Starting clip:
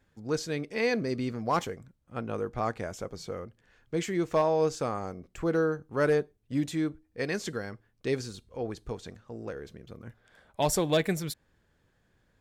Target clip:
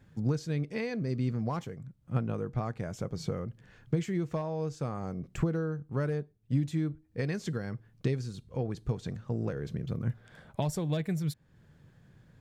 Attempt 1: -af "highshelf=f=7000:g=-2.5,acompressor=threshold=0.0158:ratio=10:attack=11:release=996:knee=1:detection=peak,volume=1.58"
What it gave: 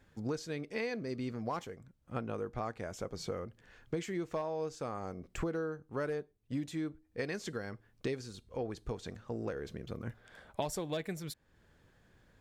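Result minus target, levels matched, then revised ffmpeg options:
125 Hz band -7.0 dB
-af "highshelf=f=7000:g=-2.5,acompressor=threshold=0.0158:ratio=10:attack=11:release=996:knee=1:detection=peak,equalizer=f=140:t=o:w=1.2:g=14.5,volume=1.58"

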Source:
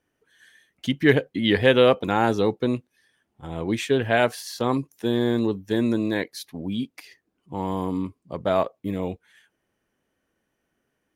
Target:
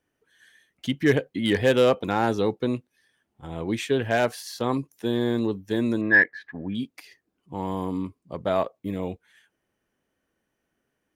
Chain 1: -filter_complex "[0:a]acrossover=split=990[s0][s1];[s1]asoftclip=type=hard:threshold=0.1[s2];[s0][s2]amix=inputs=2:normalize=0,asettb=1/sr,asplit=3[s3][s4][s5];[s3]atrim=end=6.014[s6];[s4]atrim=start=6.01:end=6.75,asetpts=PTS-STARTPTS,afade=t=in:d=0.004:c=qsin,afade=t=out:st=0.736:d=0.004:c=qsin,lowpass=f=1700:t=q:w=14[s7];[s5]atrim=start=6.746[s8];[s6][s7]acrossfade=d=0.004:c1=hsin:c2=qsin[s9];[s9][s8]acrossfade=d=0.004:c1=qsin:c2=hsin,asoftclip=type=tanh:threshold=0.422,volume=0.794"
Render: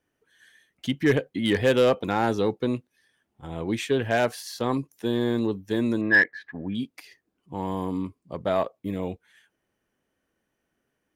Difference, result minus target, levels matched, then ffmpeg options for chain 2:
saturation: distortion +11 dB
-filter_complex "[0:a]acrossover=split=990[s0][s1];[s1]asoftclip=type=hard:threshold=0.1[s2];[s0][s2]amix=inputs=2:normalize=0,asettb=1/sr,asplit=3[s3][s4][s5];[s3]atrim=end=6.014[s6];[s4]atrim=start=6.01:end=6.75,asetpts=PTS-STARTPTS,afade=t=in:d=0.004:c=qsin,afade=t=out:st=0.736:d=0.004:c=qsin,lowpass=f=1700:t=q:w=14[s7];[s5]atrim=start=6.746[s8];[s6][s7]acrossfade=d=0.004:c1=hsin:c2=qsin[s9];[s9][s8]acrossfade=d=0.004:c1=qsin:c2=hsin,asoftclip=type=tanh:threshold=0.891,volume=0.794"

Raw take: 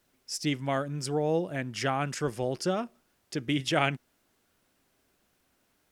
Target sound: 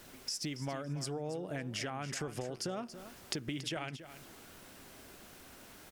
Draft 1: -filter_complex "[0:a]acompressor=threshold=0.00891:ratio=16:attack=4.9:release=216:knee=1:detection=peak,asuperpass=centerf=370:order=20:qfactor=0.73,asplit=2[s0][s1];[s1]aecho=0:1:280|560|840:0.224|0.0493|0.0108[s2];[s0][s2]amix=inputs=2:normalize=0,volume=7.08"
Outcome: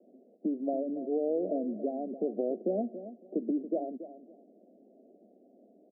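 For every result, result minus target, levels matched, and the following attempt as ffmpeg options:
compression: peak gain reduction -10.5 dB; 500 Hz band +4.0 dB
-filter_complex "[0:a]acompressor=threshold=0.00251:ratio=16:attack=4.9:release=216:knee=1:detection=peak,asuperpass=centerf=370:order=20:qfactor=0.73,asplit=2[s0][s1];[s1]aecho=0:1:280|560|840:0.224|0.0493|0.0108[s2];[s0][s2]amix=inputs=2:normalize=0,volume=7.08"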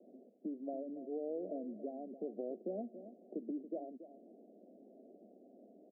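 500 Hz band +4.5 dB
-filter_complex "[0:a]acompressor=threshold=0.00251:ratio=16:attack=4.9:release=216:knee=1:detection=peak,asplit=2[s0][s1];[s1]aecho=0:1:280|560|840:0.224|0.0493|0.0108[s2];[s0][s2]amix=inputs=2:normalize=0,volume=7.08"

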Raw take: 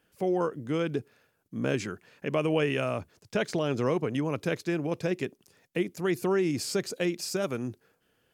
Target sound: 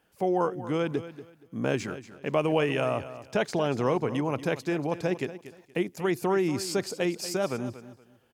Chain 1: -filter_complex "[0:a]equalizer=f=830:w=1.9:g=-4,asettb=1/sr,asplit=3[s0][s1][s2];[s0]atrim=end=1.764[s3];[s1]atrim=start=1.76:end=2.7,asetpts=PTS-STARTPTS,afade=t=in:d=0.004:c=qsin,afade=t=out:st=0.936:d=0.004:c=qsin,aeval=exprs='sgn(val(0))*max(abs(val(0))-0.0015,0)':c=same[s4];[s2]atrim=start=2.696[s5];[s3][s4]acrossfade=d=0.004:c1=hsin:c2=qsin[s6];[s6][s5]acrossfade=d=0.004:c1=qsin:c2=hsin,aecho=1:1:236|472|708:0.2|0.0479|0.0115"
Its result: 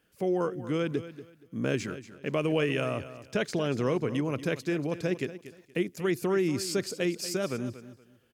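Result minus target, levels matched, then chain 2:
1 kHz band -5.5 dB
-filter_complex "[0:a]equalizer=f=830:w=1.9:g=7,asettb=1/sr,asplit=3[s0][s1][s2];[s0]atrim=end=1.764[s3];[s1]atrim=start=1.76:end=2.7,asetpts=PTS-STARTPTS,afade=t=in:d=0.004:c=qsin,afade=t=out:st=0.936:d=0.004:c=qsin,aeval=exprs='sgn(val(0))*max(abs(val(0))-0.0015,0)':c=same[s4];[s2]atrim=start=2.696[s5];[s3][s4]acrossfade=d=0.004:c1=hsin:c2=qsin[s6];[s6][s5]acrossfade=d=0.004:c1=qsin:c2=hsin,aecho=1:1:236|472|708:0.2|0.0479|0.0115"

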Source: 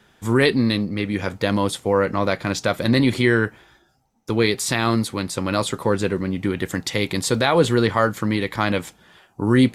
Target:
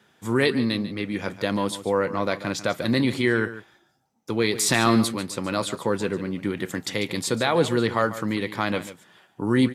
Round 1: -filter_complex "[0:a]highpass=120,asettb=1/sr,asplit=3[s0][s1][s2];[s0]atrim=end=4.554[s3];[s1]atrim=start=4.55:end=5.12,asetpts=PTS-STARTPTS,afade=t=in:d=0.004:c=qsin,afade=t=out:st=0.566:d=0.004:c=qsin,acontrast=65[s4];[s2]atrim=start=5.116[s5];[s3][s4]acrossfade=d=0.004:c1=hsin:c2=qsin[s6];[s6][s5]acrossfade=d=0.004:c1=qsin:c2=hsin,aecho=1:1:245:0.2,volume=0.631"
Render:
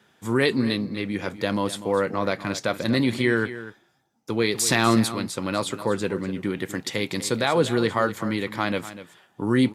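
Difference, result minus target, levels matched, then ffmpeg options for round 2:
echo 101 ms late
-filter_complex "[0:a]highpass=120,asettb=1/sr,asplit=3[s0][s1][s2];[s0]atrim=end=4.554[s3];[s1]atrim=start=4.55:end=5.12,asetpts=PTS-STARTPTS,afade=t=in:d=0.004:c=qsin,afade=t=out:st=0.566:d=0.004:c=qsin,acontrast=65[s4];[s2]atrim=start=5.116[s5];[s3][s4]acrossfade=d=0.004:c1=hsin:c2=qsin[s6];[s6][s5]acrossfade=d=0.004:c1=qsin:c2=hsin,aecho=1:1:144:0.2,volume=0.631"

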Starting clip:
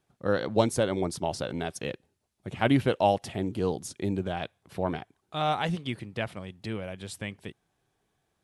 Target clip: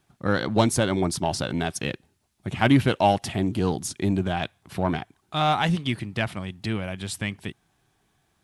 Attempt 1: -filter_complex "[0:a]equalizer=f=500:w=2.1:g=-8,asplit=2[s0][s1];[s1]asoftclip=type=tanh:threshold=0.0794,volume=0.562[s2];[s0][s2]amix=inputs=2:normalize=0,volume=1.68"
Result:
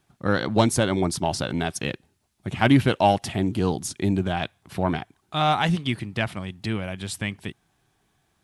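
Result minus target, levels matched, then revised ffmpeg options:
saturation: distortion -5 dB
-filter_complex "[0:a]equalizer=f=500:w=2.1:g=-8,asplit=2[s0][s1];[s1]asoftclip=type=tanh:threshold=0.0376,volume=0.562[s2];[s0][s2]amix=inputs=2:normalize=0,volume=1.68"

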